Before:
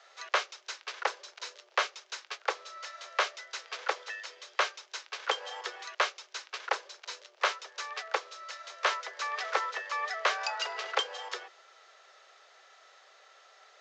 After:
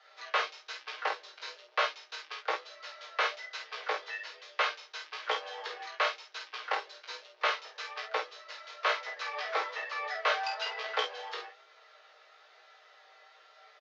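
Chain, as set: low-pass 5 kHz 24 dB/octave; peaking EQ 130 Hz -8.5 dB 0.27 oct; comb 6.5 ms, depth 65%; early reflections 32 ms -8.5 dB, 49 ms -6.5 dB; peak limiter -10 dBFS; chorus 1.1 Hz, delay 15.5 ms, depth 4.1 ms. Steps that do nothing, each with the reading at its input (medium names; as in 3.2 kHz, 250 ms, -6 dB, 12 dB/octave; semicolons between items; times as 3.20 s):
peaking EQ 130 Hz: input has nothing below 320 Hz; peak limiter -10 dBFS: peak at its input -11.5 dBFS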